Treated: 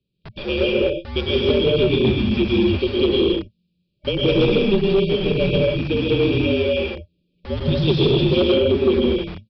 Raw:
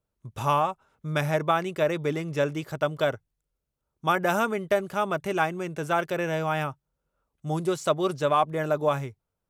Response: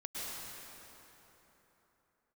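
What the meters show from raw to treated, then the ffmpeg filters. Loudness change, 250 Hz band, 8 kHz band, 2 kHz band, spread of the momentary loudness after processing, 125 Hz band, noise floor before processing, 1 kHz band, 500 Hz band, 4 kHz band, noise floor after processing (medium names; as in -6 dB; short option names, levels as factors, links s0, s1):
+8.0 dB, +13.0 dB, under -15 dB, +3.0 dB, 8 LU, +10.0 dB, -83 dBFS, -9.5 dB, +9.0 dB, +15.5 dB, -71 dBFS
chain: -filter_complex "[0:a]lowpass=f=4200:t=q:w=1.9[s0];[1:a]atrim=start_sample=2205,afade=t=out:st=0.37:d=0.01,atrim=end_sample=16758[s1];[s0][s1]afir=irnorm=-1:irlink=0,afftfilt=real='re*(1-between(b*sr/4096,820,2500))':imag='im*(1-between(b*sr/4096,820,2500))':win_size=4096:overlap=0.75,acrossover=split=180|1800[s2][s3][s4];[s2]aeval=exprs='(mod(158*val(0)+1,2)-1)/158':c=same[s5];[s5][s3][s4]amix=inputs=3:normalize=0,afreqshift=-220,aresample=11025,aeval=exprs='0.211*sin(PI/2*1.58*val(0)/0.211)':c=same,aresample=44100,volume=1.5"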